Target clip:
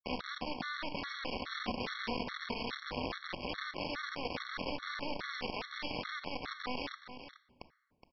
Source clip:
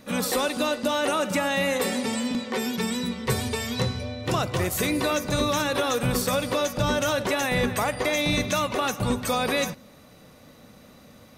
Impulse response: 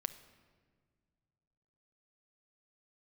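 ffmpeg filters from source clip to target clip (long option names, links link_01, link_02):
-filter_complex "[0:a]acrossover=split=190 2500:gain=0.178 1 0.0891[link_01][link_02][link_03];[link_01][link_02][link_03]amix=inputs=3:normalize=0,bandreject=frequency=1500:width=9.6,acompressor=threshold=-39dB:ratio=16,alimiter=level_in=15.5dB:limit=-24dB:level=0:latency=1:release=56,volume=-15.5dB,atempo=1.4,aresample=11025,acrusher=bits=6:mix=0:aa=0.000001,aresample=44100,aecho=1:1:419:0.282[link_04];[1:a]atrim=start_sample=2205,asetrate=70560,aresample=44100[link_05];[link_04][link_05]afir=irnorm=-1:irlink=0,afftfilt=real='re*gt(sin(2*PI*2.4*pts/sr)*(1-2*mod(floor(b*sr/1024/1100),2)),0)':imag='im*gt(sin(2*PI*2.4*pts/sr)*(1-2*mod(floor(b*sr/1024/1100),2)),0)':win_size=1024:overlap=0.75,volume=16dB"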